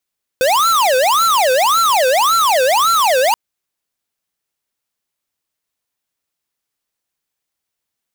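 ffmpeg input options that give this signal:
-f lavfi -i "aevalsrc='0.224*(2*lt(mod((932.5*t-427.5/(2*PI*1.8)*sin(2*PI*1.8*t)),1),0.5)-1)':d=2.93:s=44100"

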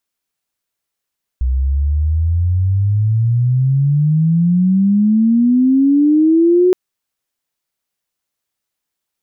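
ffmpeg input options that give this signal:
-f lavfi -i "aevalsrc='pow(10,(-12.5+5*t/5.32)/20)*sin(2*PI*62*5.32/log(370/62)*(exp(log(370/62)*t/5.32)-1))':d=5.32:s=44100"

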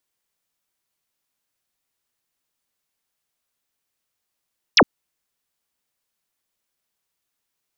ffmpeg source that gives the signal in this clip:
-f lavfi -i "aevalsrc='0.376*clip(t/0.002,0,1)*clip((0.06-t)/0.002,0,1)*sin(2*PI*6400*0.06/log(170/6400)*(exp(log(170/6400)*t/0.06)-1))':d=0.06:s=44100"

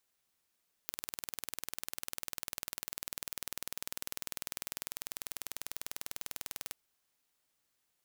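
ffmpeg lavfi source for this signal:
-f lavfi -i "aevalsrc='0.299*eq(mod(n,2194),0)':d=5.85:s=44100"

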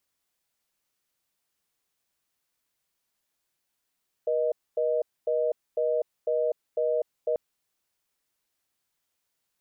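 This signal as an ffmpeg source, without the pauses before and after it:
-f lavfi -i "aevalsrc='0.0531*(sin(2*PI*480*t)+sin(2*PI*620*t))*clip(min(mod(t,0.5),0.25-mod(t,0.5))/0.005,0,1)':d=3.09:s=44100"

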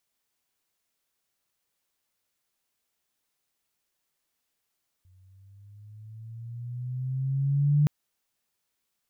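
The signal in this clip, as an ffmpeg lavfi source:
-f lavfi -i "aevalsrc='pow(10,(-17+38.5*(t/2.82-1))/20)*sin(2*PI*91.1*2.82/(8.5*log(2)/12)*(exp(8.5*log(2)/12*t/2.82)-1))':d=2.82:s=44100"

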